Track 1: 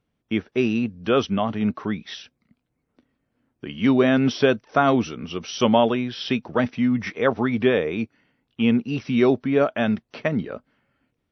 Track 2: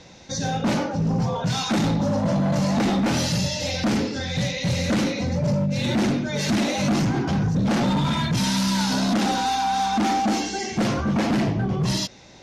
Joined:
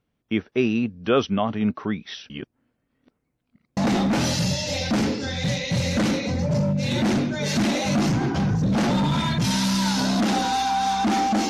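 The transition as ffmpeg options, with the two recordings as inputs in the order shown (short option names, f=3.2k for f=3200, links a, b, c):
-filter_complex "[0:a]apad=whole_dur=11.49,atrim=end=11.49,asplit=2[a][b];[a]atrim=end=2.302[c];[b]atrim=start=2.298:end=3.772,asetpts=PTS-STARTPTS,areverse[d];[1:a]atrim=start=2.698:end=10.42[e];[c][d]acrossfade=d=0.004:c1=hsin:c2=hsin[f];[f][e]acrossfade=d=0.004:c1=hsin:c2=hsin"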